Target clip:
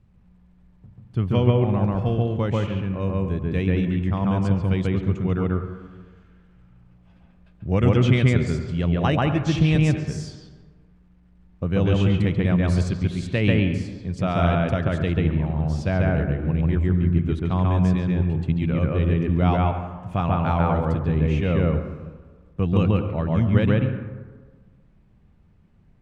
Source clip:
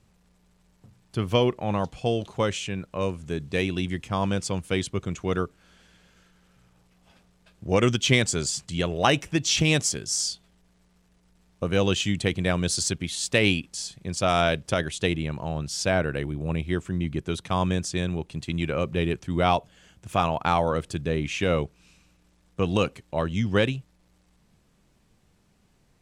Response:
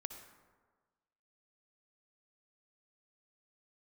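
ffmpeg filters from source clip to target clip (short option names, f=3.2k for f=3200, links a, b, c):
-filter_complex "[0:a]bass=f=250:g=11,treble=f=4k:g=-15,asplit=2[a][b];[1:a]atrim=start_sample=2205,lowpass=3k,adelay=139[c];[b][c]afir=irnorm=-1:irlink=0,volume=4dB[d];[a][d]amix=inputs=2:normalize=0,volume=-4.5dB"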